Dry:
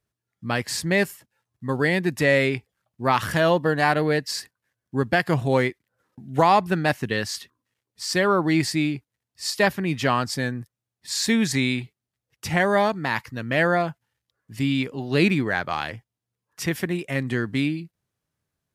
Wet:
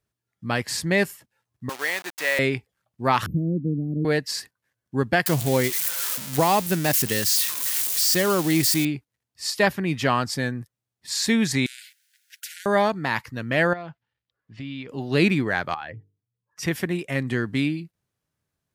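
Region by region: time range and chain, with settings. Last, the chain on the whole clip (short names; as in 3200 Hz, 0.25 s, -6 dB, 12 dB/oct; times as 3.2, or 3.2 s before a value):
1.69–2.39 level-crossing sampler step -26.5 dBFS + Bessel high-pass 1000 Hz
3.26–4.05 inverse Chebyshev band-stop 860–9100 Hz, stop band 60 dB + bell 430 Hz +7.5 dB 2.2 oct
5.26–8.85 switching spikes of -15.5 dBFS + dynamic EQ 1200 Hz, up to -5 dB, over -32 dBFS, Q 0.88
11.66–12.66 compressor, threshold -33 dBFS + brick-wall FIR high-pass 1400 Hz + spectral compressor 4:1
13.73–14.89 block floating point 7-bit + ladder low-pass 5100 Hz, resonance 20% + compressor 4:1, threshold -31 dBFS
15.74–16.63 spectral contrast raised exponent 1.7 + notches 50/100/150/200/250/300/350/400/450 Hz + compressor 2.5:1, threshold -32 dBFS
whole clip: dry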